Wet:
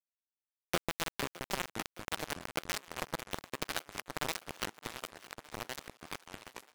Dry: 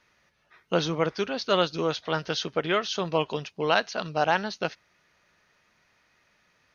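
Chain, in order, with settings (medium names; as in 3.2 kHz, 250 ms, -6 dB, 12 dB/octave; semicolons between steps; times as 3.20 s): random holes in the spectrogram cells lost 36%; low-pass that closes with the level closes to 2.2 kHz, closed at -23 dBFS; graphic EQ 125/500/1000/2000/4000 Hz +7/-7/-7/+5/-12 dB; compression 2.5:1, threshold -50 dBFS, peak gain reduction 17.5 dB; bit crusher 6-bit; thinning echo 615 ms, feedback 69%, high-pass 240 Hz, level -18 dB; ever faster or slower copies 294 ms, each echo -4 st, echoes 3, each echo -6 dB; trim +11 dB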